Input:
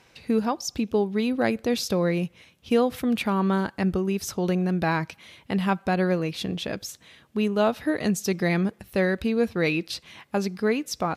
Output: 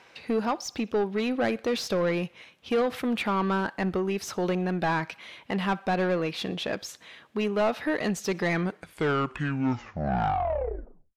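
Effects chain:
turntable brake at the end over 2.67 s
mid-hump overdrive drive 20 dB, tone 2,100 Hz, clips at −9 dBFS
feedback echo with a high-pass in the loop 62 ms, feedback 53%, high-pass 850 Hz, level −24 dB
level −7 dB

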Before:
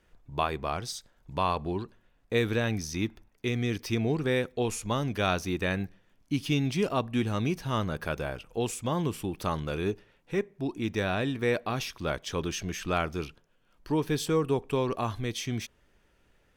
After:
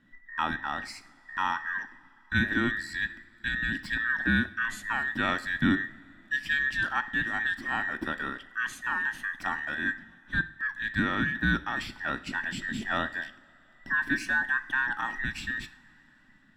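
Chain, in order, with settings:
frequency inversion band by band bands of 2,000 Hz
low-pass filter 2,900 Hz 6 dB per octave
low shelf with overshoot 350 Hz +9 dB, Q 3
coupled-rooms reverb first 0.52 s, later 4.5 s, from −20 dB, DRR 11.5 dB

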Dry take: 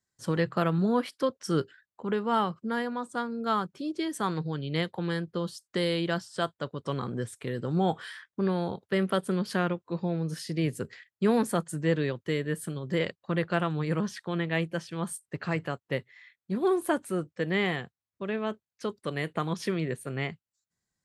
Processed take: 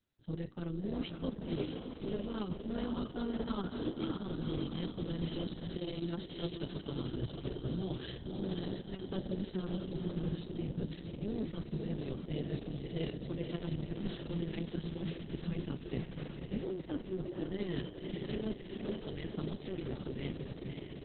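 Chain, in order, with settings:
low-pass that shuts in the quiet parts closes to 2,800 Hz, open at −24.5 dBFS
flat-topped bell 1,100 Hz −13.5 dB 2.4 octaves
hum removal 310 Hz, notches 14
reversed playback
downward compressor 16 to 1, threshold −38 dBFS, peak gain reduction 18 dB
reversed playback
amplitude modulation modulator 190 Hz, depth 60%
feedback delay with all-pass diffusion 549 ms, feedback 59%, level −4 dB
level +7.5 dB
Opus 6 kbit/s 48,000 Hz

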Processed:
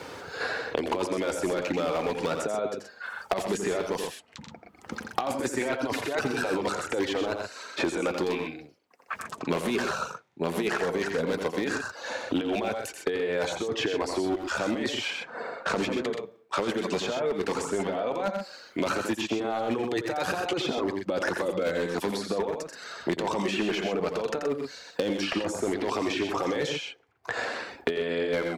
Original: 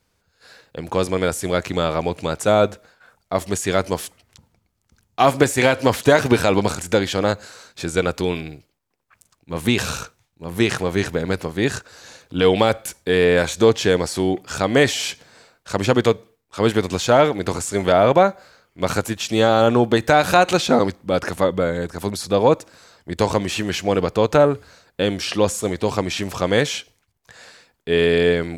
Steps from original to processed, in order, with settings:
low-pass filter 3,800 Hz 6 dB per octave
reverb reduction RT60 0.69 s
high-pass filter 340 Hz 12 dB per octave
spectral tilt −2 dB per octave
compressor whose output falls as the input rises −24 dBFS, ratio −1
flanger 0.15 Hz, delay 2.2 ms, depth 3.1 ms, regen −58%
gain into a clipping stage and back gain 22 dB
loudspeakers that aren't time-aligned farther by 29 metres −7 dB, 43 metres −9 dB
multiband upward and downward compressor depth 100%

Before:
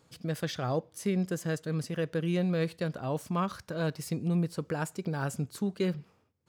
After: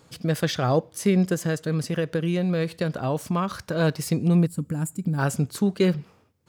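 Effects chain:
0:01.33–0:03.65: downward compressor, threshold −30 dBFS, peak gain reduction 5.5 dB
0:04.46–0:05.18: gain on a spectral selection 310–6,900 Hz −15 dB
level +9 dB

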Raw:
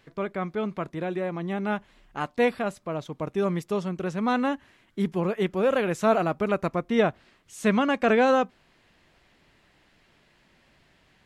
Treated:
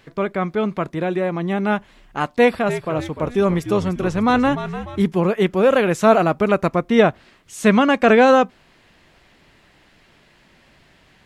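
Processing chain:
0:02.24–0:05.02: echo with shifted repeats 297 ms, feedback 44%, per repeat −79 Hz, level −11 dB
level +8 dB

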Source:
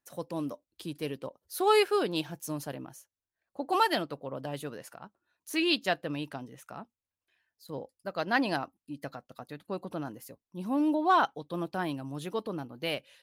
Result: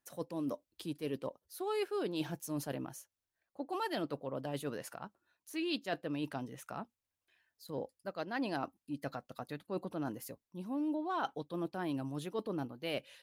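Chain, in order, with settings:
dynamic equaliser 330 Hz, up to +5 dB, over −38 dBFS, Q 0.86
reversed playback
downward compressor 5 to 1, threshold −36 dBFS, peak gain reduction 17.5 dB
reversed playback
level +1 dB

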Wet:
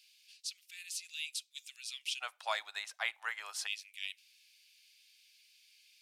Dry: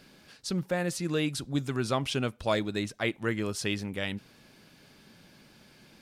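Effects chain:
elliptic high-pass filter 2,500 Hz, stop band 80 dB, from 0:02.20 760 Hz, from 0:03.66 2,400 Hz
level −2.5 dB

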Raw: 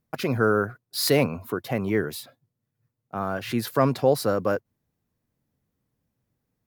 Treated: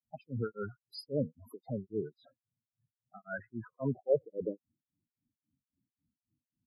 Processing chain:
granular cloud 249 ms, grains 3.7 per second, spray 18 ms, pitch spread up and down by 0 semitones
low-pass filter sweep 12,000 Hz → 310 Hz, 0:01.85–0:04.63
spectral peaks only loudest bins 8
level −7 dB

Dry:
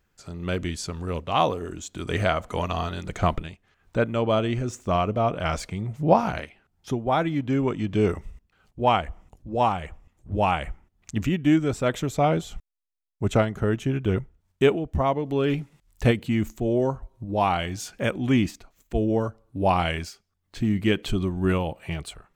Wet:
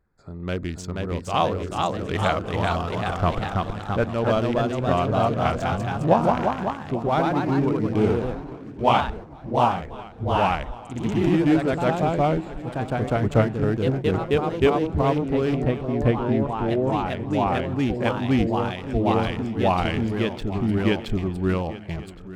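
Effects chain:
adaptive Wiener filter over 15 samples
0:16.05–0:17.95: low-pass filter 1,400 Hz 6 dB per octave
feedback echo with a long and a short gap by turns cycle 1,116 ms, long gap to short 3 to 1, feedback 40%, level −16.5 dB
delay with pitch and tempo change per echo 509 ms, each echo +1 semitone, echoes 3

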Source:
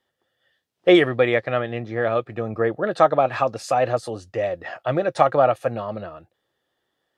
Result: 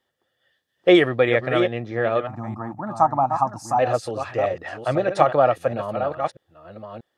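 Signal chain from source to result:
delay that plays each chunk backwards 637 ms, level −8 dB
0:02.27–0:03.79: drawn EQ curve 290 Hz 0 dB, 460 Hz −27 dB, 880 Hz +10 dB, 1,700 Hz −15 dB, 3,300 Hz −25 dB, 5,800 Hz −1 dB

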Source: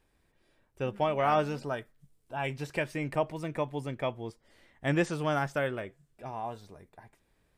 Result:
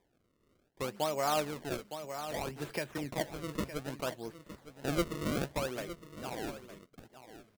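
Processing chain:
high-pass filter 170 Hz 12 dB per octave
in parallel at 0 dB: downward compressor, threshold −40 dBFS, peak gain reduction 17 dB
on the sum: sample-and-hold swept by an LFO 31×, swing 160% 0.63 Hz
on a send: single-tap delay 912 ms −13 dB
0:01.73–0:02.98: on the sum: multiband upward and downward compressor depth 70%
level −6 dB

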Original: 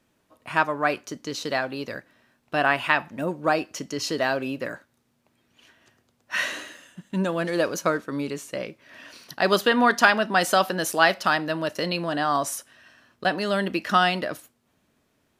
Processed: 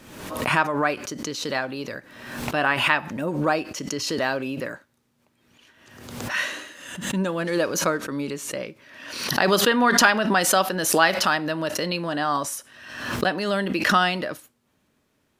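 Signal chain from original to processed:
notch filter 690 Hz, Q 13
background raised ahead of every attack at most 55 dB per second

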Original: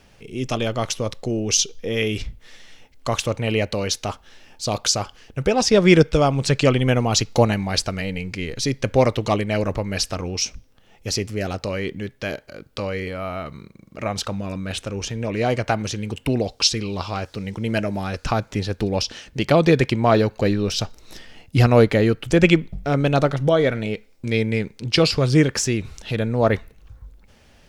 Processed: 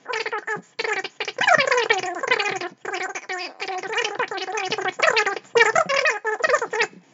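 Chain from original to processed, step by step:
coupled-rooms reverb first 0.43 s, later 2.5 s, from −28 dB, DRR 7.5 dB
change of speed 3.88×
brick-wall band-pass 120–7,300 Hz
level −2 dB

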